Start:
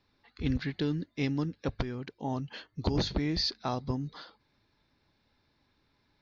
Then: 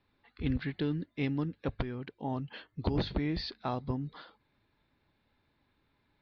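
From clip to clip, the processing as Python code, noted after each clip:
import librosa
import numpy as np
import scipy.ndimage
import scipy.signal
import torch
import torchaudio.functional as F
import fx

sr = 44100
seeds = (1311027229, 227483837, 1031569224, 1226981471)

y = scipy.signal.sosfilt(scipy.signal.butter(4, 3700.0, 'lowpass', fs=sr, output='sos'), x)
y = F.gain(torch.from_numpy(y), -1.5).numpy()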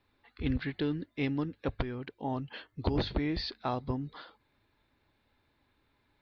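y = fx.peak_eq(x, sr, hz=170.0, db=-5.5, octaves=0.75)
y = F.gain(torch.from_numpy(y), 2.0).numpy()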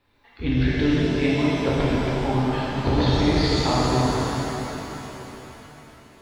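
y = fx.rev_shimmer(x, sr, seeds[0], rt60_s=3.8, semitones=7, shimmer_db=-8, drr_db=-8.0)
y = F.gain(torch.from_numpy(y), 4.0).numpy()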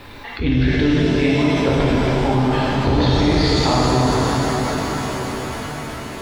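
y = fx.env_flatten(x, sr, amount_pct=50)
y = F.gain(torch.from_numpy(y), 2.5).numpy()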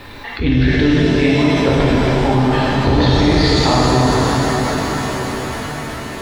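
y = fx.small_body(x, sr, hz=(1800.0, 4000.0), ring_ms=45, db=7)
y = F.gain(torch.from_numpy(y), 3.0).numpy()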